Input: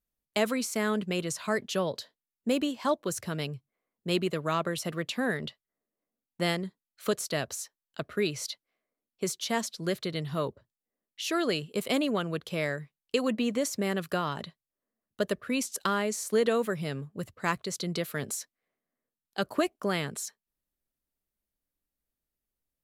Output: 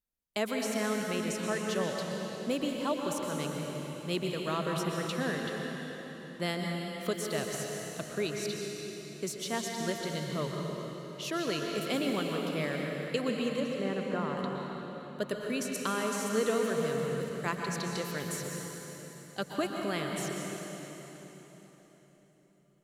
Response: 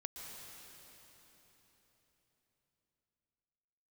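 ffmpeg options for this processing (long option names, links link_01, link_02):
-filter_complex "[0:a]asettb=1/sr,asplit=3[link_01][link_02][link_03];[link_01]atrim=end=13.604[link_04];[link_02]atrim=start=13.6:end=14.37,asetpts=PTS-STARTPTS,afade=type=in:duration=0.004:curve=qsin,afade=type=out:start_time=0.766:duration=0.004:curve=qsin,lowpass=1900[link_05];[link_03]atrim=start=14.366[link_06];[link_04][link_05]acrossfade=duration=0.004:curve1=hsin:curve2=qsin[link_07];[link_07][link_06]acrossfade=duration=0.004:curve1=qsin:curve2=hsin[link_08];[1:a]atrim=start_sample=2205,asetrate=43659,aresample=44100[link_09];[link_08][link_09]afir=irnorm=-1:irlink=0"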